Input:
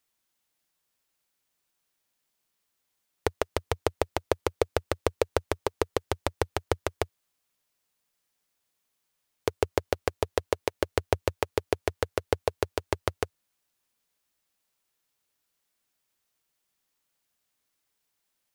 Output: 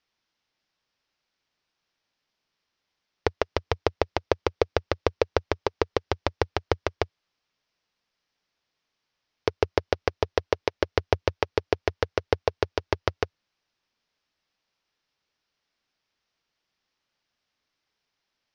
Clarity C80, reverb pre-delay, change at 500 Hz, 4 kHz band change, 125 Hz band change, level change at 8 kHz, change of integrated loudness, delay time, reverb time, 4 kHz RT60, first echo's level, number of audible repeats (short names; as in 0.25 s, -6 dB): none, none, +2.5 dB, +3.0 dB, +2.5 dB, -6.0 dB, +2.5 dB, none, none, none, none, none